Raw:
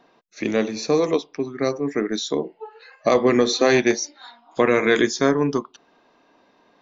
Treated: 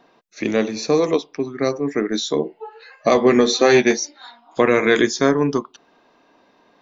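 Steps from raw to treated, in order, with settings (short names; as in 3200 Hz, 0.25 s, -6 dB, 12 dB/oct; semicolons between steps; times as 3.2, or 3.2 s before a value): 2.13–3.97 doubler 13 ms -7 dB; gain +2 dB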